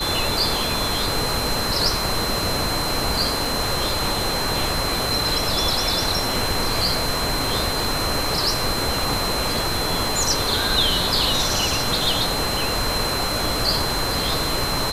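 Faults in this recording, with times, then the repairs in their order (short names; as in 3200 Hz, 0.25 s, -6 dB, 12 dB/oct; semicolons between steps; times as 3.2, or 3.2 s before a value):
tone 4100 Hz -26 dBFS
3.45 gap 3.2 ms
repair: notch 4100 Hz, Q 30; interpolate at 3.45, 3.2 ms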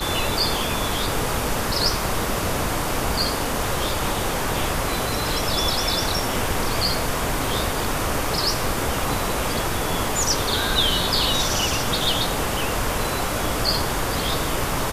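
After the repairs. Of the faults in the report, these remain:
none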